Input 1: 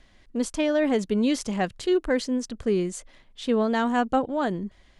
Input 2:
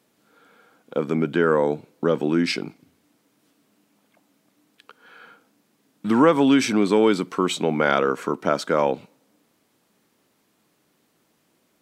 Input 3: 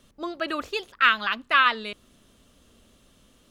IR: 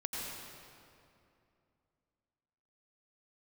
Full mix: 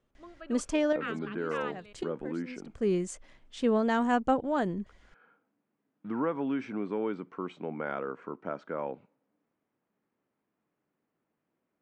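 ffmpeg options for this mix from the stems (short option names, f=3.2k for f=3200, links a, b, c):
-filter_complex "[0:a]adelay=150,volume=-3dB[a];[1:a]lowpass=2.1k,volume=-14.5dB,asplit=2[b][c];[2:a]lowpass=f=2.6k:p=1,volume=-17.5dB[d];[c]apad=whole_len=226718[e];[a][e]sidechaincompress=threshold=-50dB:ratio=8:attack=8.6:release=280[f];[f][b][d]amix=inputs=3:normalize=0,lowpass=f=9.1k:w=0.5412,lowpass=f=9.1k:w=1.3066,equalizer=f=3.9k:w=2:g=-5.5"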